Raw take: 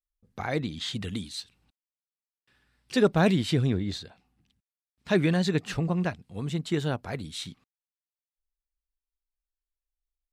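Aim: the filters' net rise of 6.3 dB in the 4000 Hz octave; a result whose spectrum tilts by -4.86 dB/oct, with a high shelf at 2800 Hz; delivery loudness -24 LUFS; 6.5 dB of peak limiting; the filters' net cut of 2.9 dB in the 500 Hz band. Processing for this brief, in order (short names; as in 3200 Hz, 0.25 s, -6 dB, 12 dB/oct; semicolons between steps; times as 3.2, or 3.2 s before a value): bell 500 Hz -4 dB; high shelf 2800 Hz +3 dB; bell 4000 Hz +5 dB; gain +5.5 dB; limiter -11.5 dBFS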